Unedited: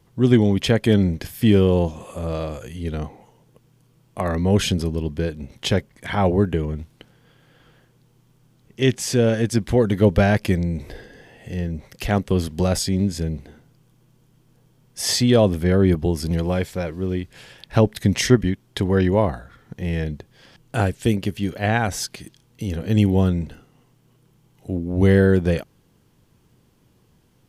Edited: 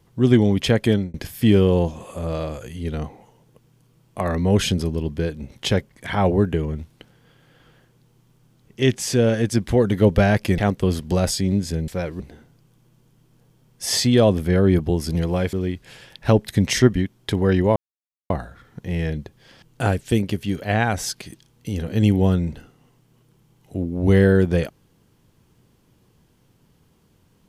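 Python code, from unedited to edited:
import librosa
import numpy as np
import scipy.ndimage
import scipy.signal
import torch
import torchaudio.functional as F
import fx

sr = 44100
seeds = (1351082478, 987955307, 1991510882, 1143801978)

y = fx.edit(x, sr, fx.fade_out_span(start_s=0.87, length_s=0.27),
    fx.cut(start_s=10.58, length_s=1.48),
    fx.move(start_s=16.69, length_s=0.32, to_s=13.36),
    fx.insert_silence(at_s=19.24, length_s=0.54), tone=tone)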